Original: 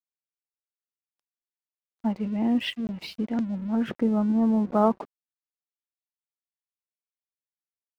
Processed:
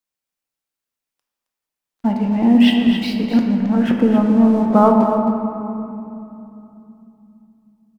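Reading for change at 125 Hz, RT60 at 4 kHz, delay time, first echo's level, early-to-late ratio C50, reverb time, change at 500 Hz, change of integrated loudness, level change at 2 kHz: +10.5 dB, 1.5 s, 268 ms, -9.0 dB, 2.5 dB, 2.9 s, +10.5 dB, +10.5 dB, +10.5 dB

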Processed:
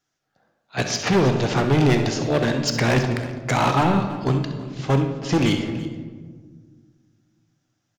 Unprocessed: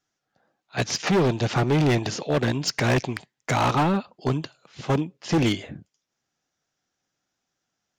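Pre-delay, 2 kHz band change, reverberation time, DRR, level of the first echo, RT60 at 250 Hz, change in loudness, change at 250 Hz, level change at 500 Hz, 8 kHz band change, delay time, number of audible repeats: 22 ms, +3.0 dB, 1.6 s, 4.5 dB, -11.5 dB, 2.3 s, +2.5 dB, +3.5 dB, +3.0 dB, +2.0 dB, 66 ms, 2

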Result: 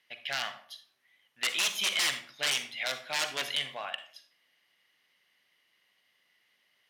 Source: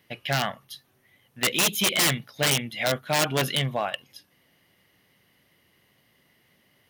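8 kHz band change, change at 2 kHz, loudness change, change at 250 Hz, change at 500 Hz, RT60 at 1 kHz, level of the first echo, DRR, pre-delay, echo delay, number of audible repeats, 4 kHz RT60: -7.5 dB, -4.5 dB, -6.5 dB, -21.0 dB, -14.0 dB, 0.50 s, no echo, 9.0 dB, 39 ms, no echo, no echo, 0.35 s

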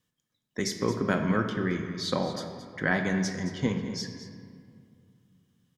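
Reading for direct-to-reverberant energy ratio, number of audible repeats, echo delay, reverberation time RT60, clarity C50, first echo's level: 4.5 dB, 1, 221 ms, 2.3 s, 6.0 dB, -13.5 dB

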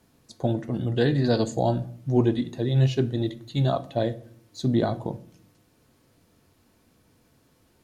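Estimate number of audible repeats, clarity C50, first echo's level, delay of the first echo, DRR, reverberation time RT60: no echo, 17.5 dB, no echo, no echo, 10.5 dB, 0.55 s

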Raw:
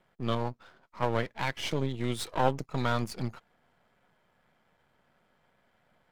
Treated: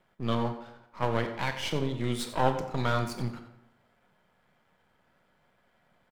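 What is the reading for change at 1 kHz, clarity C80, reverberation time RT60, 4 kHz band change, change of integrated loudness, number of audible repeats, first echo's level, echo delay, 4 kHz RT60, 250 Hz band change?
+1.0 dB, 10.0 dB, 0.85 s, +1.0 dB, +1.0 dB, 1, -13.5 dB, 90 ms, 0.55 s, +1.5 dB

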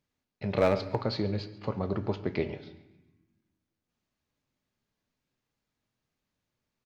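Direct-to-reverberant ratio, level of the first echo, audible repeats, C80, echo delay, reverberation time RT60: 10.5 dB, -20.0 dB, 3, 14.5 dB, 138 ms, 1.0 s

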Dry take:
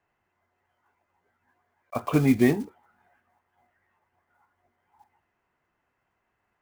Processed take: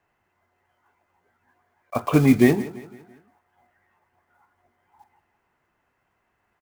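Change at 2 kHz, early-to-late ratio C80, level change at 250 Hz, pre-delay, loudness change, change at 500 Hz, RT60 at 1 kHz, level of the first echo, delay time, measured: +4.5 dB, no reverb, +4.5 dB, no reverb, +4.0 dB, +4.5 dB, no reverb, -17.0 dB, 169 ms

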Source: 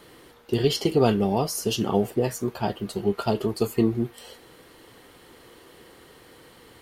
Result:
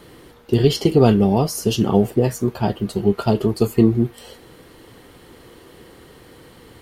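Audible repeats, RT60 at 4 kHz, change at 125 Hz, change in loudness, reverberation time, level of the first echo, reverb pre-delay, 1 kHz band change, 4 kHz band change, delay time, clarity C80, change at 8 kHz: no echo, no reverb, +9.5 dB, +6.5 dB, no reverb, no echo, no reverb, +3.5 dB, +2.5 dB, no echo, no reverb, +2.5 dB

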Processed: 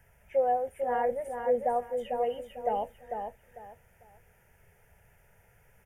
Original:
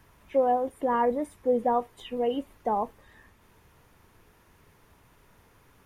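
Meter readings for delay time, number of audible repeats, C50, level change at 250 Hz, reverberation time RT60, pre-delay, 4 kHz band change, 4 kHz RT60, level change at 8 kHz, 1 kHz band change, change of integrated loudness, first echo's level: 448 ms, 3, no reverb, -12.5 dB, no reverb, no reverb, -6.5 dB, no reverb, no reading, -2.5 dB, -3.0 dB, -5.5 dB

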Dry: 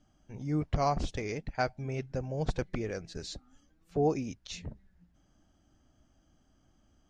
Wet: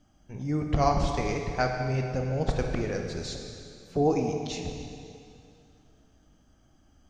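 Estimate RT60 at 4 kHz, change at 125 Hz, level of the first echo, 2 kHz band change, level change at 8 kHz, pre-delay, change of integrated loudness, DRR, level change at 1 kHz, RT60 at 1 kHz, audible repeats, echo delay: 2.3 s, +5.5 dB, no echo, +5.5 dB, +5.5 dB, 7 ms, +5.0 dB, 2.5 dB, +5.0 dB, 2.5 s, no echo, no echo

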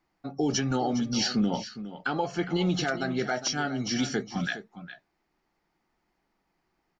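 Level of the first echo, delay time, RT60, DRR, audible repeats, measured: -13.0 dB, 410 ms, no reverb, no reverb, 1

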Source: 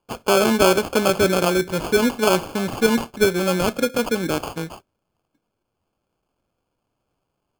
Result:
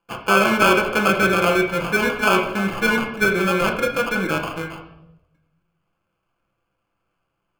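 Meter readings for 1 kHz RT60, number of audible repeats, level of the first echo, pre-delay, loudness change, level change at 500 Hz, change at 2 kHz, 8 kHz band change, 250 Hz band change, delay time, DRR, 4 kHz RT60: 0.75 s, no echo, no echo, 6 ms, +1.0 dB, -2.0 dB, +7.0 dB, -5.0 dB, -1.0 dB, no echo, 0.5 dB, 0.70 s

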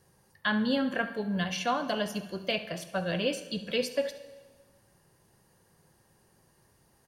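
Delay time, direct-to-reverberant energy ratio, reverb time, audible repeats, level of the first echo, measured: 70 ms, 9.5 dB, 1.4 s, 1, -15.0 dB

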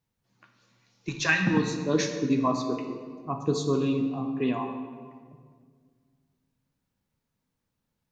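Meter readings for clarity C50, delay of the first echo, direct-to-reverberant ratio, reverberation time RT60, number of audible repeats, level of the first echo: 6.0 dB, no echo, 4.0 dB, 1.9 s, no echo, no echo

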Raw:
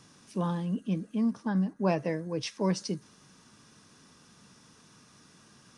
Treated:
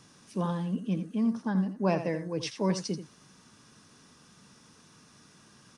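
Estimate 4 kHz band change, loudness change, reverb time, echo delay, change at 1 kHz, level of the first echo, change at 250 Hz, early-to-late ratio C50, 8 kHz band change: +0.5 dB, +0.5 dB, no reverb, 83 ms, +0.5 dB, -10.5 dB, +0.5 dB, no reverb, +0.5 dB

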